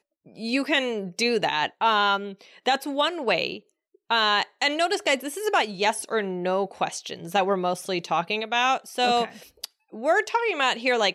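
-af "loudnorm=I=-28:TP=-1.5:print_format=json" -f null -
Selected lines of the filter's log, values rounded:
"input_i" : "-24.2",
"input_tp" : "-11.4",
"input_lra" : "1.9",
"input_thresh" : "-34.6",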